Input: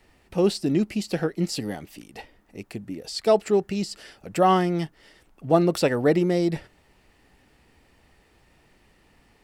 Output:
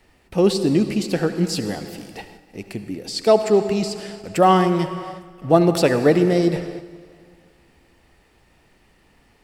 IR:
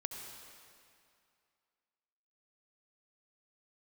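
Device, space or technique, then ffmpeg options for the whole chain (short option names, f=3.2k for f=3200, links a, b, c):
keyed gated reverb: -filter_complex "[0:a]asplit=3[a][b][c];[1:a]atrim=start_sample=2205[d];[b][d]afir=irnorm=-1:irlink=0[e];[c]apad=whole_len=415898[f];[e][f]sidechaingate=range=-6dB:threshold=-54dB:ratio=16:detection=peak,volume=1dB[g];[a][g]amix=inputs=2:normalize=0,volume=-1dB"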